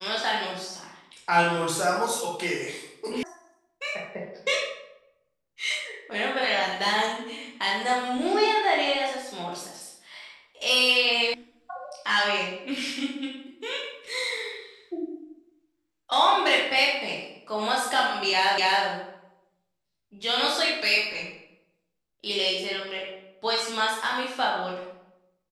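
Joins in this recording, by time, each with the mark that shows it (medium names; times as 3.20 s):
3.23 s: sound stops dead
11.34 s: sound stops dead
18.58 s: repeat of the last 0.27 s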